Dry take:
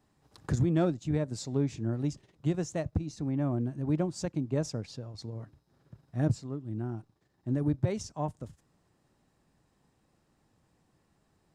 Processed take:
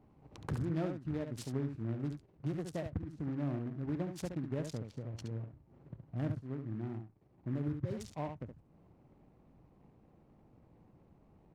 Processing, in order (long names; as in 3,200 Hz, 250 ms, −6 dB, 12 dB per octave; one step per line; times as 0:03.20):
adaptive Wiener filter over 25 samples
downward compressor 2 to 1, threshold −55 dBFS, peak gain reduction 17.5 dB
single-tap delay 70 ms −7 dB
time-frequency box erased 0:07.66–0:07.94, 600–2,900 Hz
short delay modulated by noise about 1,200 Hz, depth 0.039 ms
level +7.5 dB